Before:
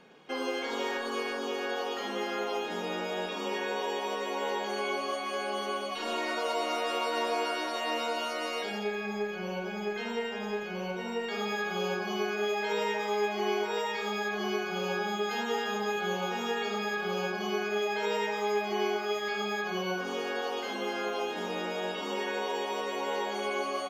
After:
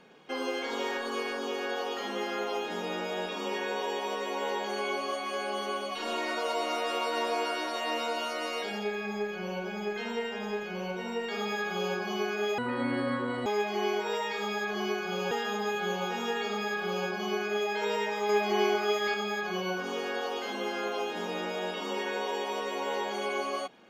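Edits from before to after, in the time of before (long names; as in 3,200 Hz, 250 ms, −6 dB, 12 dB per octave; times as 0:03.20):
0:12.58–0:13.10: play speed 59%
0:14.95–0:15.52: remove
0:18.50–0:19.35: clip gain +3.5 dB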